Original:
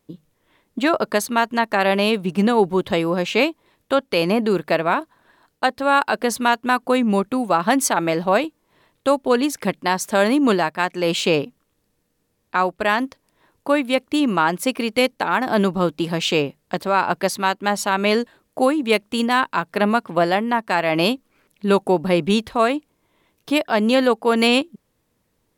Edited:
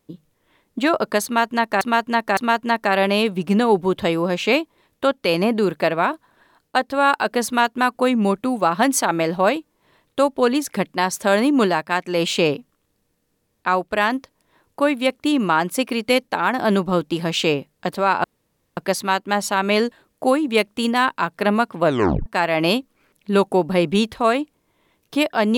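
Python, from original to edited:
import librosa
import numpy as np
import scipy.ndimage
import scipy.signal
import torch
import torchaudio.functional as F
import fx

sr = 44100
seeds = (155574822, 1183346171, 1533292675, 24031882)

y = fx.edit(x, sr, fx.repeat(start_s=1.25, length_s=0.56, count=3),
    fx.insert_room_tone(at_s=17.12, length_s=0.53),
    fx.tape_stop(start_s=20.19, length_s=0.42), tone=tone)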